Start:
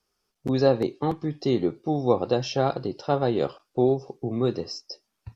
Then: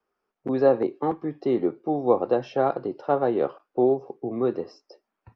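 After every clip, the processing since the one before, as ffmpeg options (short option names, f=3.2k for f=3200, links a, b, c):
-filter_complex "[0:a]acrossover=split=230 2200:gain=0.2 1 0.0794[a][b][c];[a][b][c]amix=inputs=3:normalize=0,volume=2dB"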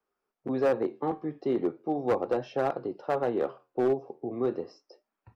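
-af "flanger=delay=7:depth=5.4:regen=-77:speed=0.38:shape=sinusoidal,asoftclip=type=hard:threshold=-19.5dB"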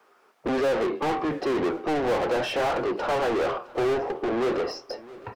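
-filter_complex "[0:a]asplit=2[a][b];[b]highpass=f=720:p=1,volume=34dB,asoftclip=type=tanh:threshold=-19dB[c];[a][c]amix=inputs=2:normalize=0,lowpass=f=2.7k:p=1,volume=-6dB,aecho=1:1:663|1326|1989:0.1|0.041|0.0168"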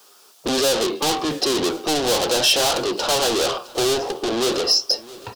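-af "aexciter=amount=7.7:drive=6.3:freq=3.1k,volume=3dB"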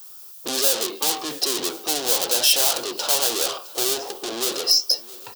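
-af "aemphasis=mode=production:type=bsi,volume=-6dB"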